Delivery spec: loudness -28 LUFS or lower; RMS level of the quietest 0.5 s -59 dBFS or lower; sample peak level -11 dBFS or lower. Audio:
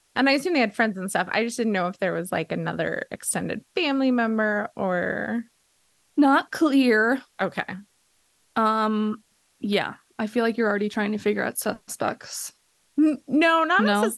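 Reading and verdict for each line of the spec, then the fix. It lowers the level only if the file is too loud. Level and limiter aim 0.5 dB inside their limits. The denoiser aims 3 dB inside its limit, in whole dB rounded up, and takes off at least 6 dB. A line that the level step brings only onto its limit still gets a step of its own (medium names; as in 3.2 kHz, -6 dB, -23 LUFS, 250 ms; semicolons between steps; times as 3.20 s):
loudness -24.0 LUFS: fail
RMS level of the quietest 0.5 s -66 dBFS: pass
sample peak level -8.5 dBFS: fail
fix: trim -4.5 dB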